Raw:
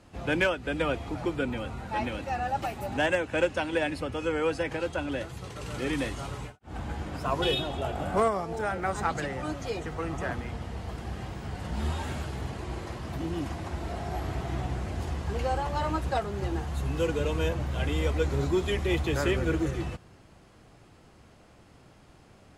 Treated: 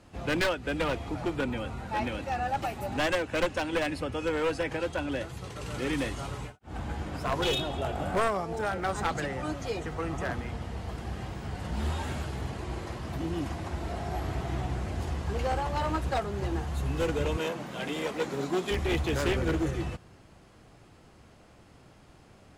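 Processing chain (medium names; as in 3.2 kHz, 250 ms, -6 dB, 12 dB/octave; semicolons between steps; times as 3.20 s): one-sided wavefolder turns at -23.5 dBFS; 17.37–18.71 s: Chebyshev high-pass 180 Hz, order 3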